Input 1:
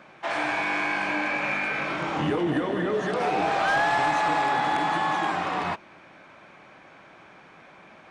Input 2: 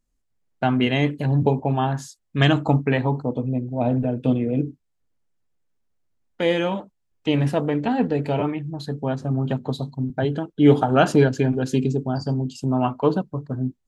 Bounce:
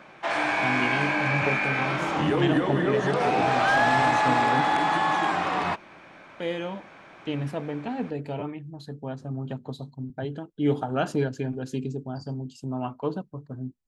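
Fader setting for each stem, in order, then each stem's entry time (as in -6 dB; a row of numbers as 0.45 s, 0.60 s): +1.5 dB, -9.5 dB; 0.00 s, 0.00 s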